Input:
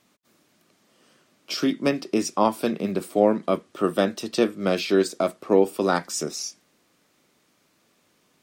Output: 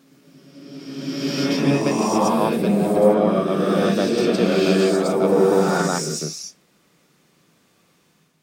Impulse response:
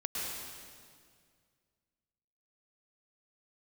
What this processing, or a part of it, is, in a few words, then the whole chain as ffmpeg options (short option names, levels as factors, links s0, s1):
reverse reverb: -filter_complex "[0:a]areverse[s0];[1:a]atrim=start_sample=2205[s1];[s0][s1]afir=irnorm=-1:irlink=0,areverse,equalizer=f=160:w=4.2:g=11.5"